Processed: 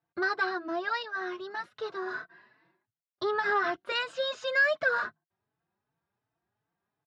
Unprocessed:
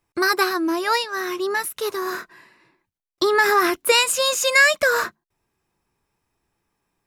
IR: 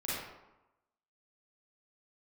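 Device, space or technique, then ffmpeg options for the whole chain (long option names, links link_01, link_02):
barber-pole flanger into a guitar amplifier: -filter_complex "[0:a]asplit=2[link_01][link_02];[link_02]adelay=4.1,afreqshift=2.7[link_03];[link_01][link_03]amix=inputs=2:normalize=1,asoftclip=type=tanh:threshold=-13dB,highpass=100,equalizer=frequency=110:width_type=q:width=4:gain=7,equalizer=frequency=160:width_type=q:width=4:gain=6,equalizer=frequency=690:width_type=q:width=4:gain=8,equalizer=frequency=1500:width_type=q:width=4:gain=7,equalizer=frequency=2400:width_type=q:width=4:gain=-6,lowpass=frequency=4200:width=0.5412,lowpass=frequency=4200:width=1.3066,volume=-8dB"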